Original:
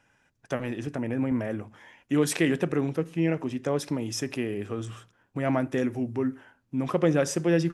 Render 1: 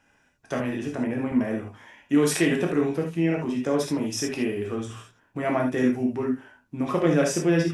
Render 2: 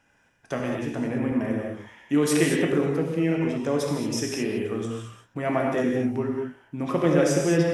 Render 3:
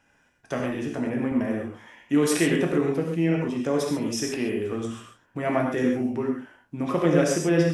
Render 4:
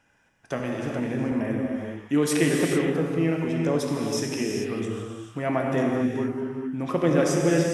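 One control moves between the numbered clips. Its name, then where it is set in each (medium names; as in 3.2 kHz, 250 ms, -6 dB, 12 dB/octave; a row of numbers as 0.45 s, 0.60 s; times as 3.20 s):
gated-style reverb, gate: 100 ms, 250 ms, 160 ms, 470 ms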